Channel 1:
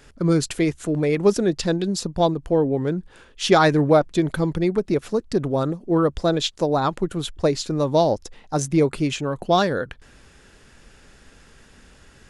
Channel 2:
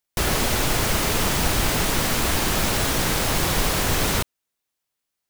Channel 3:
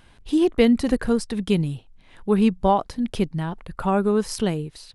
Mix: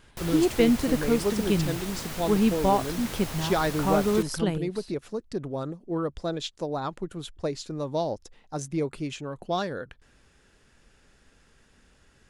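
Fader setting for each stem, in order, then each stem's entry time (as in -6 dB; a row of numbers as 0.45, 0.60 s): -10.0, -14.5, -4.0 dB; 0.00, 0.00, 0.00 s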